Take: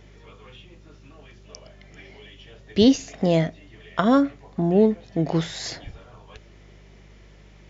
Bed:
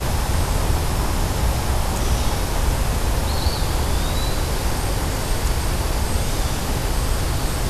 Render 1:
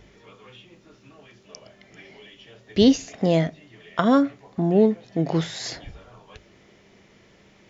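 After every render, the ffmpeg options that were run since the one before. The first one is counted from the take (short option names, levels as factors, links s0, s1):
-af "bandreject=f=50:t=h:w=4,bandreject=f=100:t=h:w=4,bandreject=f=150:t=h:w=4"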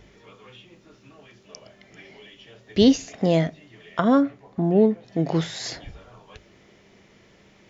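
-filter_complex "[0:a]asettb=1/sr,asplit=3[s0][s1][s2];[s0]atrim=end=3.994[s3];[s1]atrim=start=3.99:end=5.08,asetpts=PTS-STARTPTS,afade=t=in:d=0.004:c=qsin,afade=t=out:st=1.086:d=0.004:c=qsin,highshelf=f=2600:g=-8[s4];[s2]atrim=start=5.076[s5];[s3][s4]acrossfade=d=0.004:c1=hsin:c2=qsin[s6];[s6][s5]acrossfade=d=0.004:c1=qsin:c2=hsin"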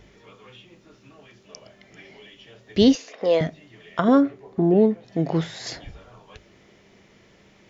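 -filter_complex "[0:a]asettb=1/sr,asplit=3[s0][s1][s2];[s0]atrim=end=2.954[s3];[s1]atrim=start=2.95:end=3.41,asetpts=PTS-STARTPTS,afade=t=in:d=0.004:c=qsin,afade=t=out:st=0.456:d=0.004:c=qsin,highpass=470,equalizer=f=490:t=q:w=4:g=9,equalizer=f=720:t=q:w=4:g=-4,equalizer=f=1100:t=q:w=4:g=5,lowpass=f=5600:w=0.5412,lowpass=f=5600:w=1.3066[s4];[s2]atrim=start=3.406[s5];[s3][s4]acrossfade=d=0.004:c1=hsin:c2=qsin[s6];[s6][s5]acrossfade=d=0.004:c1=qsin:c2=hsin,asettb=1/sr,asplit=3[s7][s8][s9];[s7]atrim=end=4.084[s10];[s8]atrim=start=4.08:end=4.74,asetpts=PTS-STARTPTS,afade=t=in:d=0.004:c=qsin,afade=t=out:st=0.656:d=0.004:c=qsin,equalizer=f=390:w=3.9:g=12[s11];[s9]atrim=start=4.736[s12];[s10][s11]acrossfade=d=0.004:c1=hsin:c2=qsin[s13];[s13][s12]acrossfade=d=0.004:c1=qsin:c2=hsin,asettb=1/sr,asplit=3[s14][s15][s16];[s14]atrim=end=5.274[s17];[s15]atrim=start=5.27:end=5.67,asetpts=PTS-STARTPTS,afade=t=in:d=0.004:c=qsin,afade=t=out:st=0.396:d=0.004:c=qsin,highshelf=f=3900:g=-8[s18];[s16]atrim=start=5.666[s19];[s17][s18]acrossfade=d=0.004:c1=hsin:c2=qsin[s20];[s20][s19]acrossfade=d=0.004:c1=qsin:c2=hsin"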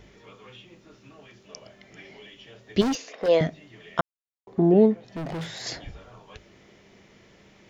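-filter_complex "[0:a]asplit=3[s0][s1][s2];[s0]afade=t=out:st=2.8:d=0.02[s3];[s1]asoftclip=type=hard:threshold=0.075,afade=t=in:st=2.8:d=0.02,afade=t=out:st=3.27:d=0.02[s4];[s2]afade=t=in:st=3.27:d=0.02[s5];[s3][s4][s5]amix=inputs=3:normalize=0,asettb=1/sr,asplit=3[s6][s7][s8];[s6]atrim=end=5.034[s9];[s7]atrim=start=5.03:end=5.62,asetpts=PTS-STARTPTS,afade=t=in:d=0.004:c=qsin,afade=t=out:st=0.586:d=0.004:c=qsin,volume=31.6,asoftclip=hard,volume=0.0316[s10];[s8]atrim=start=5.616[s11];[s9][s10]acrossfade=d=0.004:c1=hsin:c2=qsin[s12];[s12][s11]acrossfade=d=0.004:c1=qsin:c2=hsin,asplit=3[s13][s14][s15];[s13]atrim=end=4.01,asetpts=PTS-STARTPTS,afade=t=out:st=4.006:d=0.004:c=hsin[s16];[s14]atrim=start=4.01:end=4.47,asetpts=PTS-STARTPTS,volume=0[s17];[s15]atrim=start=4.47,asetpts=PTS-STARTPTS,afade=t=in:d=0.004:c=hsin[s18];[s16][s17][s18]concat=n=3:v=0:a=1"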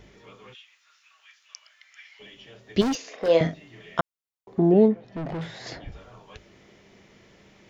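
-filter_complex "[0:a]asplit=3[s0][s1][s2];[s0]afade=t=out:st=0.53:d=0.02[s3];[s1]highpass=f=1300:w=0.5412,highpass=f=1300:w=1.3066,afade=t=in:st=0.53:d=0.02,afade=t=out:st=2.19:d=0.02[s4];[s2]afade=t=in:st=2.19:d=0.02[s5];[s3][s4][s5]amix=inputs=3:normalize=0,asettb=1/sr,asplit=3[s6][s7][s8];[s6]atrim=end=3.004[s9];[s7]atrim=start=3:end=3.97,asetpts=PTS-STARTPTS,afade=t=in:d=0.004:c=qsin,afade=t=out:st=0.966:d=0.004:c=qsin,asplit=2[s10][s11];[s11]adelay=42,volume=0.422[s12];[s10][s12]amix=inputs=2:normalize=0,atrim=end_sample=42777[s13];[s8]atrim=start=3.966[s14];[s9][s13]acrossfade=d=0.004:c1=hsin:c2=qsin[s15];[s15][s14]acrossfade=d=0.004:c1=qsin:c2=hsin,asettb=1/sr,asplit=3[s16][s17][s18];[s16]atrim=end=4.884[s19];[s17]atrim=start=4.88:end=5.92,asetpts=PTS-STARTPTS,afade=t=in:d=0.004:c=qsin,afade=t=out:st=1.036:d=0.004:c=qsin,aemphasis=mode=reproduction:type=75fm[s20];[s18]atrim=start=5.916[s21];[s19][s20]acrossfade=d=0.004:c1=hsin:c2=qsin[s22];[s22][s21]acrossfade=d=0.004:c1=qsin:c2=hsin"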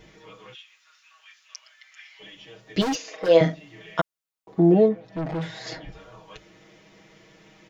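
-af "lowshelf=f=200:g=-4.5,aecho=1:1:6.3:0.9"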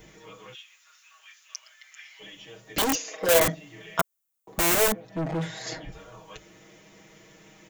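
-filter_complex "[0:a]acrossover=split=500[s0][s1];[s0]aeval=exprs='(mod(11.2*val(0)+1,2)-1)/11.2':c=same[s2];[s2][s1]amix=inputs=2:normalize=0,aexciter=amount=2.1:drive=7.9:freq=6500"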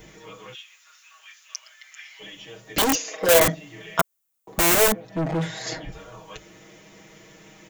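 -af "volume=1.58,alimiter=limit=0.794:level=0:latency=1"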